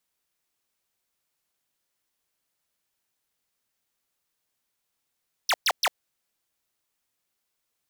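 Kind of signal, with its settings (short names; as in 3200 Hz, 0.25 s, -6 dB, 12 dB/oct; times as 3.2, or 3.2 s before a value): burst of laser zaps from 6400 Hz, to 550 Hz, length 0.05 s square, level -21.5 dB, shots 3, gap 0.12 s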